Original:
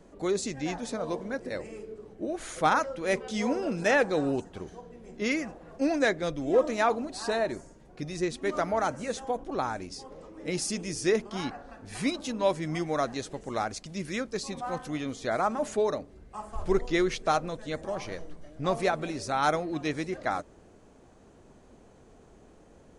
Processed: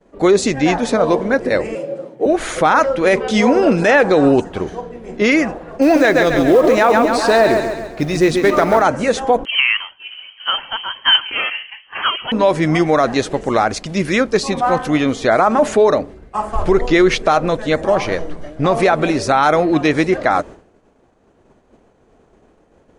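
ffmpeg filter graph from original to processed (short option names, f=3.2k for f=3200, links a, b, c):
-filter_complex "[0:a]asettb=1/sr,asplit=3[a][b][c];[a]atrim=end=1.754[d];[b]atrim=start=1.75:end=2.26,asetpts=PTS-STARTPTS,afade=t=in:d=0.004:c=qsin,afade=t=out:st=0.506:d=0.004:c=qsin,equalizer=f=1.1k:t=o:w=2.2:g=-4.5,afreqshift=120[e];[c]atrim=start=2.256[f];[d][e]acrossfade=d=0.004:c1=hsin:c2=qsin[g];[g][f]acrossfade=d=0.004:c1=qsin:c2=hsin,asettb=1/sr,asplit=3[h][i][j];[h]atrim=end=5.824[k];[i]atrim=start=5.82:end=8.82,asetpts=PTS-STARTPTS,afade=t=in:d=0.004:c=qsin,afade=t=out:st=2.996:d=0.004:c=qsin,acrusher=bits=6:mode=log:mix=0:aa=0.000001,aecho=1:1:136|272|408|544|680|816:0.398|0.203|0.104|0.0528|0.0269|0.0137,atrim=end_sample=132300[l];[j]atrim=start=8.816[m];[k][l]acrossfade=d=0.004:c1=hsin:c2=qsin[n];[n][m]acrossfade=d=0.004:c1=qsin:c2=hsin,asettb=1/sr,asplit=3[o][p][q];[o]atrim=end=9.454[r];[p]atrim=start=9.45:end=12.32,asetpts=PTS-STARTPTS,afade=t=in:d=0.004:c=qsin,afade=t=out:st=2.866:d=0.004:c=qsin,highpass=f=420:w=0.5412,highpass=f=420:w=1.3066,aecho=1:1:139:0.0668,atrim=end_sample=126567,lowpass=f=3k:t=q:w=0.5098,lowpass=f=3k:t=q:w=0.6013,lowpass=f=3k:t=q:w=0.9,lowpass=f=3k:t=q:w=2.563,afreqshift=-3500[s];[q]atrim=start=12.316[t];[r][s]acrossfade=d=0.004:c1=hsin:c2=qsin[u];[u][t]acrossfade=d=0.004:c1=qsin:c2=hsin,agate=range=-33dB:threshold=-44dB:ratio=3:detection=peak,bass=f=250:g=-4,treble=f=4k:g=-8,alimiter=level_in=21.5dB:limit=-1dB:release=50:level=0:latency=1,volume=-2.5dB"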